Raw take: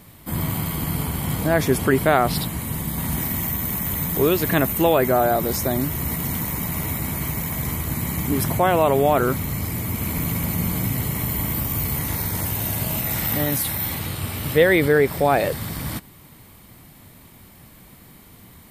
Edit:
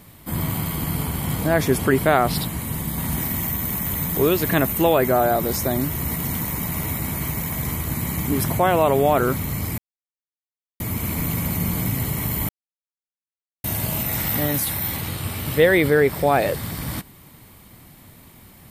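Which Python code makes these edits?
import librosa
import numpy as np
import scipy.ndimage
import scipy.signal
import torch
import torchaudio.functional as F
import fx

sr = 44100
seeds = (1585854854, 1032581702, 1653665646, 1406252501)

y = fx.edit(x, sr, fx.insert_silence(at_s=9.78, length_s=1.02),
    fx.silence(start_s=11.47, length_s=1.15), tone=tone)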